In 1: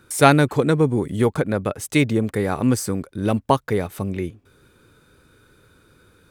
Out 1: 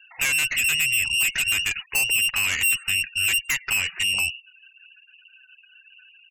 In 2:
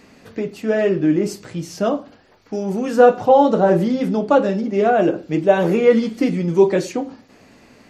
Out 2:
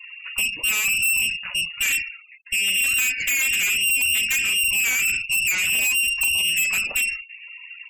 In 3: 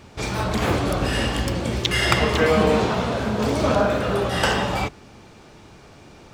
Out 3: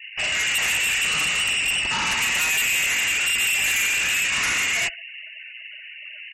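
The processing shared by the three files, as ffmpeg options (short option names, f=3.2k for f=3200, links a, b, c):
-filter_complex "[0:a]acompressor=threshold=-17dB:ratio=10,equalizer=f=125:t=o:w=1:g=-4,equalizer=f=250:t=o:w=1:g=8,equalizer=f=1k:t=o:w=1:g=9,lowpass=f=2.6k:t=q:w=0.5098,lowpass=f=2.6k:t=q:w=0.6013,lowpass=f=2.6k:t=q:w=0.9,lowpass=f=2.6k:t=q:w=2.563,afreqshift=-3000,aeval=exprs='(tanh(17.8*val(0)+0.3)-tanh(0.3))/17.8':c=same,highpass=f=50:p=1,lowshelf=f=130:g=9,bandreject=f=168.5:t=h:w=4,bandreject=f=337:t=h:w=4,bandreject=f=505.5:t=h:w=4,bandreject=f=674:t=h:w=4,bandreject=f=842.5:t=h:w=4,bandreject=f=1.011k:t=h:w=4,bandreject=f=1.1795k:t=h:w=4,bandreject=f=1.348k:t=h:w=4,bandreject=f=1.5165k:t=h:w=4,bandreject=f=1.685k:t=h:w=4,bandreject=f=1.8535k:t=h:w=4,bandreject=f=2.022k:t=h:w=4,bandreject=f=2.1905k:t=h:w=4,bandreject=f=2.359k:t=h:w=4,asplit=2[a][b];[b]aecho=0:1:110|220:0.0668|0.0154[c];[a][c]amix=inputs=2:normalize=0,afftfilt=real='re*gte(hypot(re,im),0.01)':imag='im*gte(hypot(re,im),0.01)':win_size=1024:overlap=0.75,crystalizer=i=2:c=0,volume=2dB"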